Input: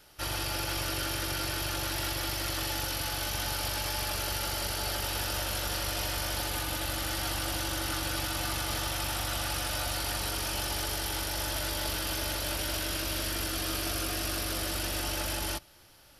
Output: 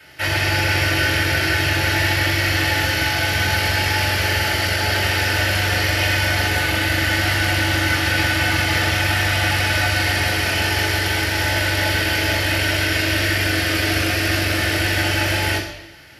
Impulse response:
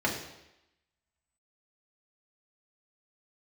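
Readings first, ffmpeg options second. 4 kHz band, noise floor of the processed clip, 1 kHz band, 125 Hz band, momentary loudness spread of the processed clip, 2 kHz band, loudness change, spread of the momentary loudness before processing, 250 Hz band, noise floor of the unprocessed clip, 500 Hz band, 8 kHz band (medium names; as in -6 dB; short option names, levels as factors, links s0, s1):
+12.0 dB, -23 dBFS, +12.0 dB, +16.5 dB, 1 LU, +19.5 dB, +13.5 dB, 1 LU, +14.0 dB, -38 dBFS, +13.0 dB, +5.5 dB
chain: -filter_complex "[0:a]equalizer=f=250:t=o:w=1:g=-5,equalizer=f=1000:t=o:w=1:g=-6,equalizer=f=2000:t=o:w=1:g=9[s0];[1:a]atrim=start_sample=2205[s1];[s0][s1]afir=irnorm=-1:irlink=0,volume=1.41"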